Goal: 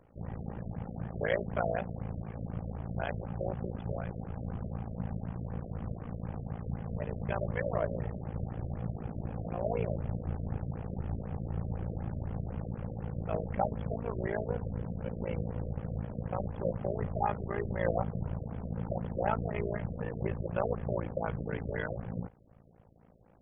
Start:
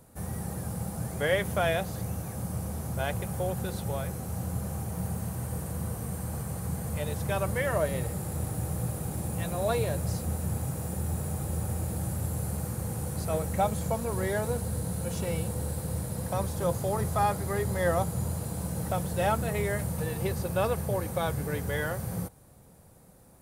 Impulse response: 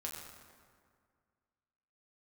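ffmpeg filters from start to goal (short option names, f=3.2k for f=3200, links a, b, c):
-af "tremolo=f=56:d=0.974,afftfilt=real='re*lt(b*sr/1024,660*pow(3500/660,0.5+0.5*sin(2*PI*4*pts/sr)))':imag='im*lt(b*sr/1024,660*pow(3500/660,0.5+0.5*sin(2*PI*4*pts/sr)))':win_size=1024:overlap=0.75"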